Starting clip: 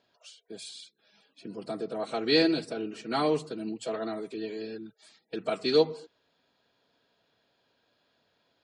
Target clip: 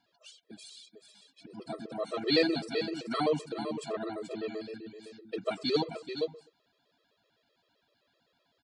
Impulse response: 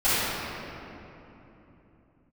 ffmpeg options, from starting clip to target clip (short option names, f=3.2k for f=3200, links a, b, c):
-filter_complex "[0:a]asplit=3[a][b][c];[a]afade=t=out:st=0.54:d=0.02[d];[b]acompressor=threshold=-44dB:ratio=6,afade=t=in:st=0.54:d=0.02,afade=t=out:st=1.48:d=0.02[e];[c]afade=t=in:st=1.48:d=0.02[f];[d][e][f]amix=inputs=3:normalize=0,asplit=2[g][h];[h]aecho=0:1:430:0.355[i];[g][i]amix=inputs=2:normalize=0,afftfilt=real='re*gt(sin(2*PI*7.8*pts/sr)*(1-2*mod(floor(b*sr/1024/340),2)),0)':imag='im*gt(sin(2*PI*7.8*pts/sr)*(1-2*mod(floor(b*sr/1024/340),2)),0)':win_size=1024:overlap=0.75,volume=1dB"